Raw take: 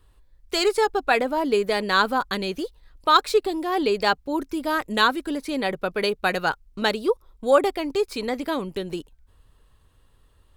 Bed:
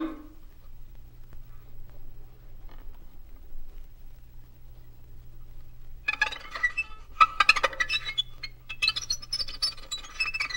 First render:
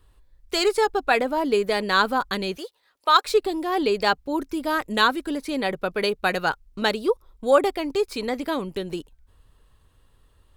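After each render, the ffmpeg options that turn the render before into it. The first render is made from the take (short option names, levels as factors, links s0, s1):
-filter_complex "[0:a]asettb=1/sr,asplit=3[s0][s1][s2];[s0]atrim=end=2.574[s3];[s1]atrim=start=2.57:end=3.25,asetpts=PTS-STARTPTS,afade=t=in:d=0.004:c=qsin,afade=t=out:st=0.676:d=0.004:c=qsin,highpass=520[s4];[s2]atrim=start=3.246[s5];[s3][s4]acrossfade=d=0.004:c1=hsin:c2=qsin[s6];[s6][s5]acrossfade=d=0.004:c1=qsin:c2=hsin"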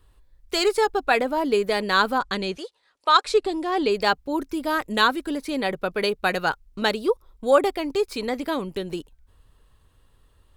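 -filter_complex "[0:a]asettb=1/sr,asplit=3[s0][s1][s2];[s0]atrim=end=2.184[s3];[s1]atrim=start=2.18:end=3.9,asetpts=PTS-STARTPTS,afade=t=in:d=0.004:c=qsin,afade=t=out:st=1.716:d=0.004:c=qsin,lowpass=f=9500:w=0.5412,lowpass=f=9500:w=1.3066[s4];[s2]atrim=start=3.896[s5];[s3][s4]acrossfade=d=0.004:c1=hsin:c2=qsin[s6];[s6][s5]acrossfade=d=0.004:c1=qsin:c2=hsin"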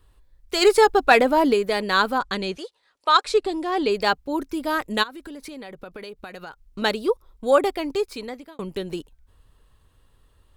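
-filter_complex "[0:a]asplit=3[s0][s1][s2];[s0]afade=t=out:st=0.61:d=0.02[s3];[s1]acontrast=53,afade=t=in:st=0.61:d=0.02,afade=t=out:st=1.52:d=0.02[s4];[s2]afade=t=in:st=1.52:d=0.02[s5];[s3][s4][s5]amix=inputs=3:normalize=0,asplit=3[s6][s7][s8];[s6]afade=t=out:st=5.02:d=0.02[s9];[s7]acompressor=threshold=0.02:ratio=10:attack=3.2:release=140:knee=1:detection=peak,afade=t=in:st=5.02:d=0.02,afade=t=out:st=6.66:d=0.02[s10];[s8]afade=t=in:st=6.66:d=0.02[s11];[s9][s10][s11]amix=inputs=3:normalize=0,asplit=2[s12][s13];[s12]atrim=end=8.59,asetpts=PTS-STARTPTS,afade=t=out:st=7.92:d=0.67[s14];[s13]atrim=start=8.59,asetpts=PTS-STARTPTS,afade=t=in:d=0.004:c=hsin[s15];[s14][s15]concat=n=2:v=0:a=1"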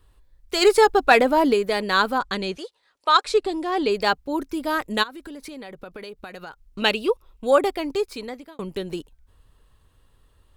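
-filter_complex "[0:a]asettb=1/sr,asplit=3[s0][s1][s2];[s0]atrim=end=6.804[s3];[s1]atrim=start=6.8:end=7.47,asetpts=PTS-STARTPTS,afade=t=in:d=0.004:c=qsin,afade=t=out:st=0.666:d=0.004:c=qsin,equalizer=f=2700:t=o:w=0.34:g=13.5[s4];[s2]atrim=start=7.466[s5];[s3][s4]acrossfade=d=0.004:c1=hsin:c2=qsin[s6];[s6][s5]acrossfade=d=0.004:c1=qsin:c2=hsin"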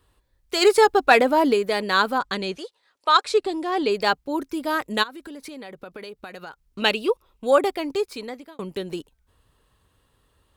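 -af "highpass=f=110:p=1"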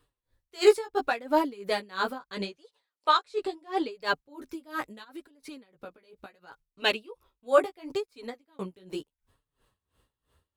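-af "flanger=delay=6.7:depth=9.9:regen=-3:speed=0.74:shape=sinusoidal,aeval=exprs='val(0)*pow(10,-23*(0.5-0.5*cos(2*PI*2.9*n/s))/20)':c=same"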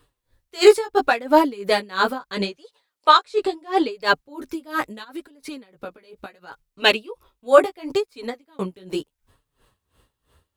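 -af "volume=2.82,alimiter=limit=0.891:level=0:latency=1"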